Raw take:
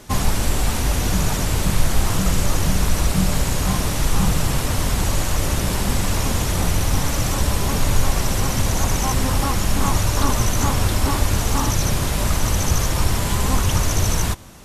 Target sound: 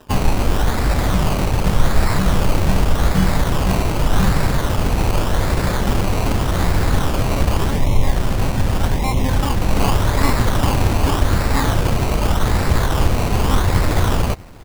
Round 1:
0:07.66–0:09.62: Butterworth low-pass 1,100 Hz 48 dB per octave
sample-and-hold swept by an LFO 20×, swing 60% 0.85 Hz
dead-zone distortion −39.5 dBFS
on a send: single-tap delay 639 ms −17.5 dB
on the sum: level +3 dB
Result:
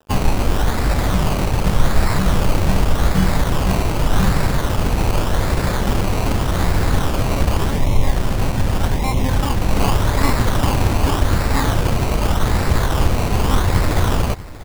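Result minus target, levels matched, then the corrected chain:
echo-to-direct +7.5 dB; dead-zone distortion: distortion +6 dB
0:07.66–0:09.62: Butterworth low-pass 1,100 Hz 48 dB per octave
sample-and-hold swept by an LFO 20×, swing 60% 0.85 Hz
dead-zone distortion −46 dBFS
on a send: single-tap delay 639 ms −25 dB
on the sum: level +3 dB

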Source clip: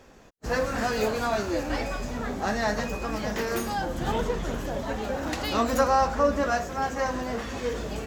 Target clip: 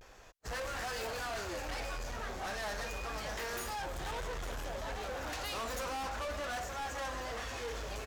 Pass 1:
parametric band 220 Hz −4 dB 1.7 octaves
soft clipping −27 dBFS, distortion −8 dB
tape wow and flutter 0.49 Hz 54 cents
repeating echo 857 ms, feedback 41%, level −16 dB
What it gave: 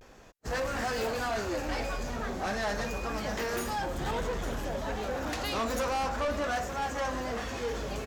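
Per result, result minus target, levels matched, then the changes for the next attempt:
250 Hz band +6.0 dB; soft clipping: distortion −4 dB
change: parametric band 220 Hz −15.5 dB 1.7 octaves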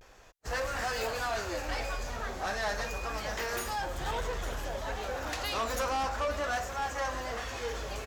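soft clipping: distortion −5 dB
change: soft clipping −36.5 dBFS, distortion −5 dB

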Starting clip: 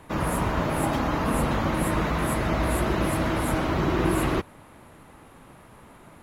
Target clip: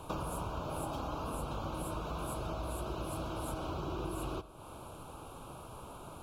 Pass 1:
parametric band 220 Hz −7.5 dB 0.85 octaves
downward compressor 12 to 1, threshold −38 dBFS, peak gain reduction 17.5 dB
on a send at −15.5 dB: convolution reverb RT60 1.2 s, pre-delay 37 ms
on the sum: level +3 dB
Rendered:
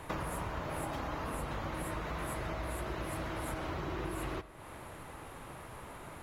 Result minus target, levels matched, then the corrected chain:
2,000 Hz band +8.0 dB
parametric band 220 Hz −7.5 dB 0.85 octaves
downward compressor 12 to 1, threshold −38 dBFS, peak gain reduction 17.5 dB
Butterworth band-reject 1,900 Hz, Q 1.6
on a send at −15.5 dB: convolution reverb RT60 1.2 s, pre-delay 37 ms
on the sum: level +3 dB

